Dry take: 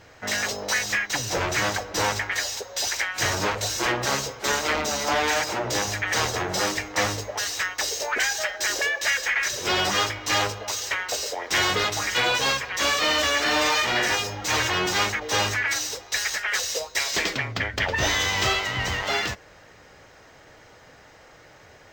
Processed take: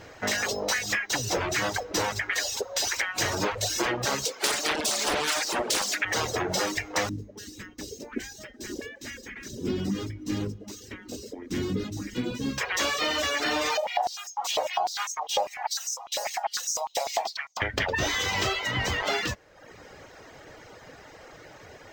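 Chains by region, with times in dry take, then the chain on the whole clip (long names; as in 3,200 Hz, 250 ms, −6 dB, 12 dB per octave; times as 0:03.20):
0:04.25–0:06.05: Butterworth high-pass 180 Hz + high-shelf EQ 2,500 Hz +10.5 dB + highs frequency-modulated by the lows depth 0.49 ms
0:07.09–0:12.58: drawn EQ curve 130 Hz 0 dB, 240 Hz +10 dB, 680 Hz −24 dB, 9,600 Hz −16 dB + single-tap delay 754 ms −23 dB
0:13.77–0:17.62: drawn EQ curve 230 Hz 0 dB, 370 Hz −14 dB, 750 Hz +7 dB, 1,600 Hz −19 dB, 3,200 Hz −12 dB, 12,000 Hz −5 dB + high-pass on a step sequencer 10 Hz 540–6,200 Hz
whole clip: reverb reduction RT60 0.71 s; parametric band 350 Hz +4 dB 1.8 octaves; downward compressor, threshold −27 dBFS; level +3 dB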